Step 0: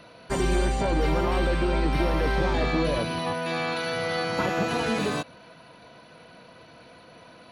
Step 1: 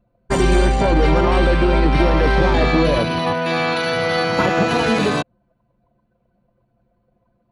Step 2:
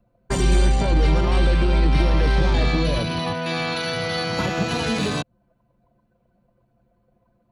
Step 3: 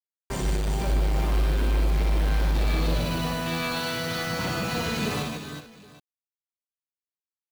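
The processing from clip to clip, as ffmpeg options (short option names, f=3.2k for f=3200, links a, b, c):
-af "anlmdn=10,volume=9dB"
-filter_complex "[0:a]acrossover=split=180|3000[a][b][c];[b]acompressor=threshold=-31dB:ratio=2[d];[a][d][c]amix=inputs=3:normalize=0"
-af "acrusher=bits=5:mix=0:aa=0.000001,asoftclip=type=tanh:threshold=-21.5dB,aecho=1:1:60|150|367|380|441|772:0.631|0.562|0.299|0.335|0.133|0.112,volume=-4dB"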